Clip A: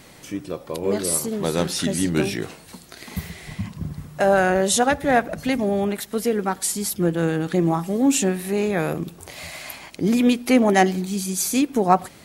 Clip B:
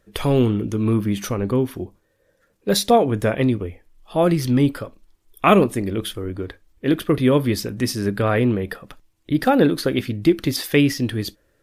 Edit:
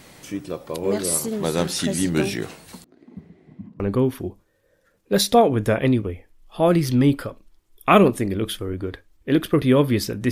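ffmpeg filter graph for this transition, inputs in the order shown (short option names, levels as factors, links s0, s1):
-filter_complex "[0:a]asettb=1/sr,asplit=3[s0][s1][s2];[s0]atrim=end=2.844[s3];[s1]atrim=start=2.84:end=3.8,asetpts=PTS-STARTPTS,afade=t=in:d=0.004:c=qsin,afade=t=out:st=0.956:d=0.004:c=qsin,bandpass=f=280:t=q:w=2.7:csg=0[s4];[s2]atrim=start=3.796[s5];[s3][s4]acrossfade=d=0.004:c1=hsin:c2=qsin[s6];[s6][s5]acrossfade=d=0.004:c1=qsin:c2=hsin,apad=whole_dur=10.31,atrim=end=10.31,atrim=end=3.802[s7];[1:a]atrim=start=1.358:end=7.87[s8];[s7][s8]acrossfade=d=0.004:c1=hsin:c2=hsin"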